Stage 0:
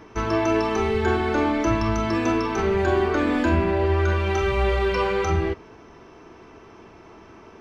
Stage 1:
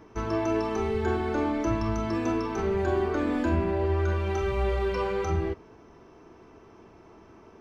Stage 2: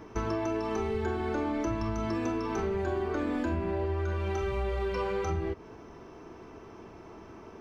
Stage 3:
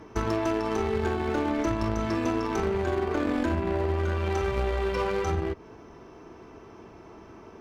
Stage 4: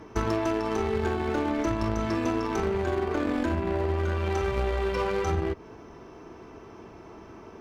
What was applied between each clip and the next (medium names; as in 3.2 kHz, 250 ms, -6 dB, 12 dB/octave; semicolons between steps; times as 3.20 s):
peaking EQ 2.7 kHz -5.5 dB 2.5 oct; trim -4.5 dB
compression 6:1, threshold -32 dBFS, peak gain reduction 11 dB; trim +4 dB
one-sided clip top -27 dBFS, bottom -24 dBFS; Chebyshev shaper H 3 -15 dB, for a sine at -23 dBFS; trim +7 dB
gain riding